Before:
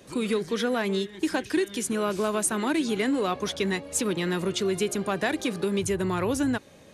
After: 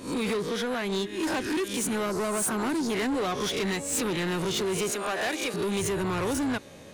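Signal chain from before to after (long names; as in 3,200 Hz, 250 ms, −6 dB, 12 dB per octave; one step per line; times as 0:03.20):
peak hold with a rise ahead of every peak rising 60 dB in 0.37 s
0:00.41–0:00.92: downward compressor 2 to 1, threshold −29 dBFS, peak gain reduction 4.5 dB
0:02.06–0:02.90: flat-topped bell 2,600 Hz −14 dB 1.1 octaves
0:04.90–0:05.54: high-pass filter 460 Hz 12 dB per octave
soft clipping −28.5 dBFS, distortion −9 dB
level +3.5 dB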